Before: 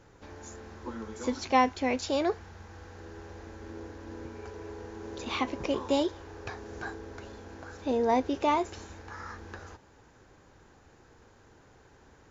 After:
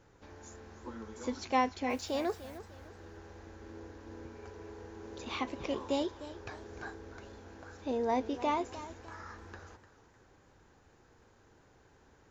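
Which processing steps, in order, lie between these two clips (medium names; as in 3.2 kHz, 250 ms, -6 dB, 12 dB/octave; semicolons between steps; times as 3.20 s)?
1.89–2.57 s: added noise white -57 dBFS; modulated delay 301 ms, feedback 35%, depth 114 cents, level -14.5 dB; trim -5.5 dB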